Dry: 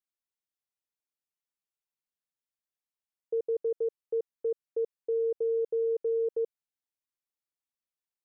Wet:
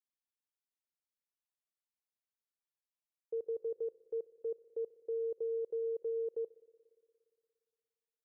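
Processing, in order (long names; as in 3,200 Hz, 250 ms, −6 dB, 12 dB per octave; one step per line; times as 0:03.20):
spring reverb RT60 2.3 s, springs 58 ms, chirp 50 ms, DRR 18.5 dB
level −7.5 dB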